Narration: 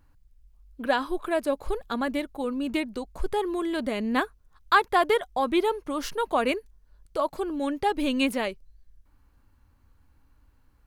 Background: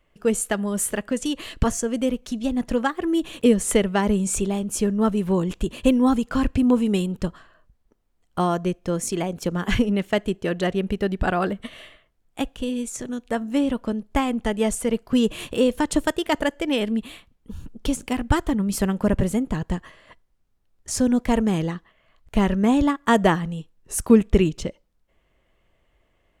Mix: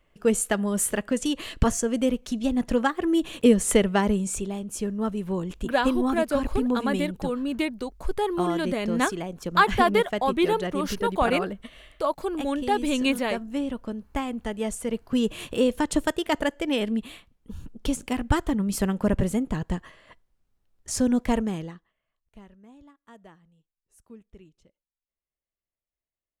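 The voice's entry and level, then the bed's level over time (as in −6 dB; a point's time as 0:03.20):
4.85 s, +1.0 dB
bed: 0:03.96 −0.5 dB
0:04.44 −7 dB
0:14.62 −7 dB
0:15.55 −2.5 dB
0:21.30 −2.5 dB
0:22.57 −32.5 dB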